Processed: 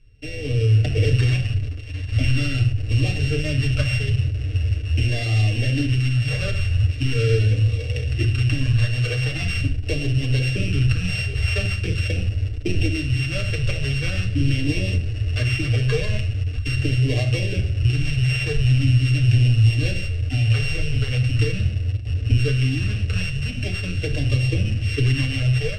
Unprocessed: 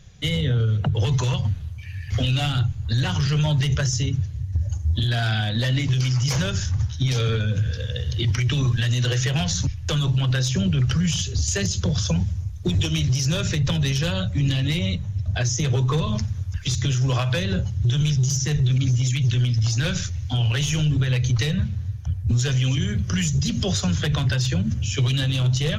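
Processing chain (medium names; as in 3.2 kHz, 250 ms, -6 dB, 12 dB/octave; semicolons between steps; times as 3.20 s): sorted samples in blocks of 16 samples; LFO notch sine 0.42 Hz 280–1500 Hz; in parallel at -11 dB: bit crusher 5-bit; on the sum: bass shelf 170 Hz +5.5 dB; static phaser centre 390 Hz, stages 4; level rider gain up to 11.5 dB; low-pass 4.1 kHz 12 dB/octave; on a send at -2 dB: reverberation, pre-delay 7 ms; on the sum: trim -7.5 dB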